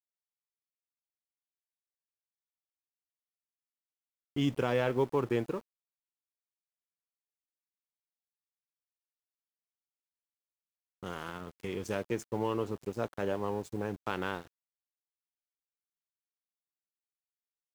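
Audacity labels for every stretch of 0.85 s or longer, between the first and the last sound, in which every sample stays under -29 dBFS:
5.580000	11.040000	silence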